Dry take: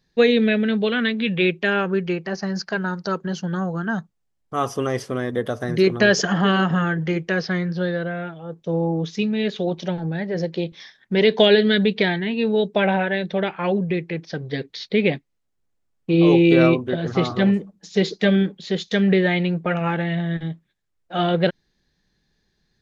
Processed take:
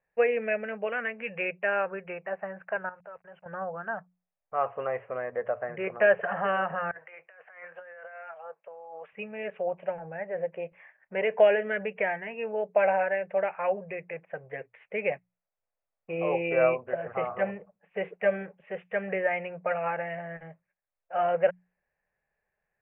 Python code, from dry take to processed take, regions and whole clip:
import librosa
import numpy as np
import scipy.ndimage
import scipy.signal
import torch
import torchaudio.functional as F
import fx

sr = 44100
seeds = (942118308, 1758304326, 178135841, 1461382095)

y = fx.chain(x, sr, fx.peak_eq(hz=250.0, db=-14.5, octaves=0.56),
    fx.level_steps(step_db=19),
    fx.sample_gate(floor_db=-52.5), at=(2.89, 3.46))
y = fx.chain(y, sr, fx.highpass(hz=880.0, slope=12),
    fx.over_compress(threshold_db=-40.0, ratio=-1.0), at=(6.91, 9.13))
y = scipy.signal.sosfilt(scipy.signal.butter(16, 2700.0, 'lowpass', fs=sr, output='sos'), y)
y = fx.low_shelf_res(y, sr, hz=420.0, db=-11.0, q=3.0)
y = fx.hum_notches(y, sr, base_hz=60, count=3)
y = F.gain(torch.from_numpy(y), -7.5).numpy()